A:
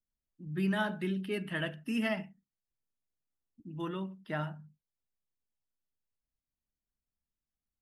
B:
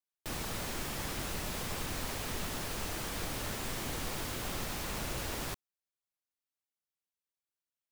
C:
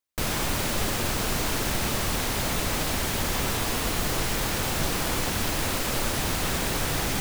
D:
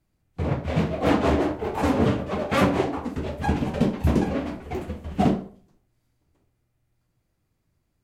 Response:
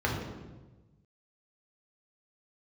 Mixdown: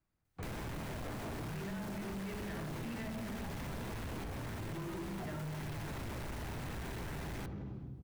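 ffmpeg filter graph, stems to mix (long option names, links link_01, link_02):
-filter_complex "[0:a]adelay=950,volume=-1.5dB,asplit=2[link_01][link_02];[link_02]volume=-3.5dB[link_03];[1:a]adelay=1000,volume=2.5dB,asplit=2[link_04][link_05];[link_05]volume=-15dB[link_06];[2:a]adelay=250,volume=-3.5dB,asplit=3[link_07][link_08][link_09];[link_07]atrim=end=4.24,asetpts=PTS-STARTPTS,afade=type=out:start_time=4.236:duration=0.004:curve=hsin[link_10];[link_08]atrim=start=4.24:end=5.39,asetpts=PTS-STARTPTS,volume=0[link_11];[link_09]atrim=start=5.39,asetpts=PTS-STARTPTS,afade=type=in:duration=0.004:curve=hsin[link_12];[link_10][link_11][link_12]concat=n=3:v=0:a=1,asplit=2[link_13][link_14];[link_14]volume=-17.5dB[link_15];[3:a]equalizer=frequency=1300:width_type=o:width=1.5:gain=7,volume=-12.5dB[link_16];[4:a]atrim=start_sample=2205[link_17];[link_03][link_06][link_15]amix=inputs=3:normalize=0[link_18];[link_18][link_17]afir=irnorm=-1:irlink=0[link_19];[link_01][link_04][link_13][link_16][link_19]amix=inputs=5:normalize=0,acrossover=split=660|2600[link_20][link_21][link_22];[link_20]acompressor=threshold=-30dB:ratio=4[link_23];[link_21]acompressor=threshold=-41dB:ratio=4[link_24];[link_22]acompressor=threshold=-49dB:ratio=4[link_25];[link_23][link_24][link_25]amix=inputs=3:normalize=0,asoftclip=type=tanh:threshold=-32.5dB,acompressor=threshold=-42dB:ratio=2.5"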